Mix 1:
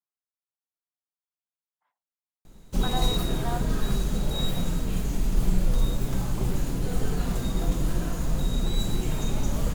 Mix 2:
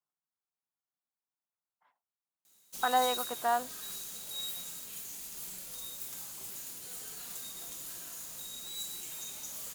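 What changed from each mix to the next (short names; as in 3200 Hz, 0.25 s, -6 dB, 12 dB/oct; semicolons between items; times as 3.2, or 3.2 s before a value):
speech +6.5 dB; background: add differentiator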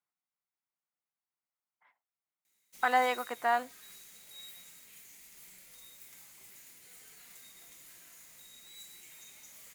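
background -11.5 dB; master: add bell 2100 Hz +13 dB 0.5 oct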